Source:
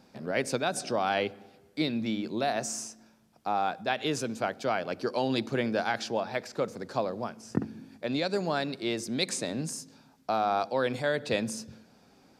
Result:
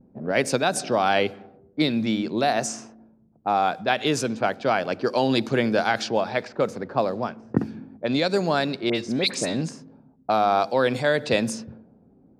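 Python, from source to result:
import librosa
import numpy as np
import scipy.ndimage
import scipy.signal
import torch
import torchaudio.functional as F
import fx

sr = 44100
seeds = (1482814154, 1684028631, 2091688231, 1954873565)

y = fx.dispersion(x, sr, late='highs', ms=57.0, hz=2400.0, at=(8.89, 9.62))
y = fx.vibrato(y, sr, rate_hz=0.46, depth_cents=27.0)
y = fx.env_lowpass(y, sr, base_hz=320.0, full_db=-26.5)
y = y * 10.0 ** (7.0 / 20.0)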